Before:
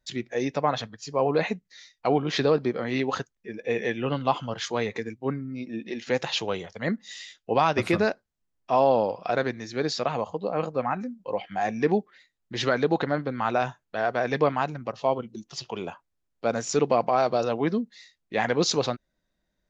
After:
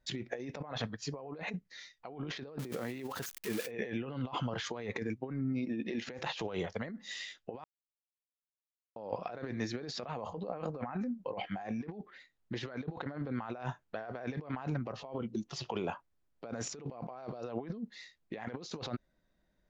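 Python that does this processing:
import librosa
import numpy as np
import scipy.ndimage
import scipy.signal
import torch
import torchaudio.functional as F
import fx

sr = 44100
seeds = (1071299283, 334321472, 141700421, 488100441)

y = fx.crossing_spikes(x, sr, level_db=-25.0, at=(2.59, 3.71))
y = fx.edit(y, sr, fx.silence(start_s=7.64, length_s=1.32), tone=tone)
y = fx.over_compress(y, sr, threshold_db=-35.0, ratio=-1.0)
y = fx.high_shelf(y, sr, hz=3800.0, db=-9.5)
y = y * 10.0 ** (-4.5 / 20.0)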